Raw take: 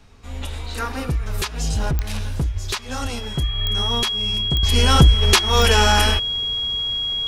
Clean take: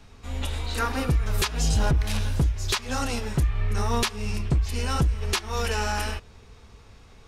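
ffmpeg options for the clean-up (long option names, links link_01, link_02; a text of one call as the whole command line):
ffmpeg -i in.wav -filter_complex "[0:a]adeclick=threshold=4,bandreject=frequency=3300:width=30,asplit=3[link_01][link_02][link_03];[link_01]afade=type=out:start_time=2.53:duration=0.02[link_04];[link_02]highpass=frequency=140:width=0.5412,highpass=frequency=140:width=1.3066,afade=type=in:start_time=2.53:duration=0.02,afade=type=out:start_time=2.65:duration=0.02[link_05];[link_03]afade=type=in:start_time=2.65:duration=0.02[link_06];[link_04][link_05][link_06]amix=inputs=3:normalize=0,asplit=3[link_07][link_08][link_09];[link_07]afade=type=out:start_time=3.02:duration=0.02[link_10];[link_08]highpass=frequency=140:width=0.5412,highpass=frequency=140:width=1.3066,afade=type=in:start_time=3.02:duration=0.02,afade=type=out:start_time=3.14:duration=0.02[link_11];[link_09]afade=type=in:start_time=3.14:duration=0.02[link_12];[link_10][link_11][link_12]amix=inputs=3:normalize=0,asetnsamples=nb_out_samples=441:pad=0,asendcmd='4.63 volume volume -11dB',volume=0dB" out.wav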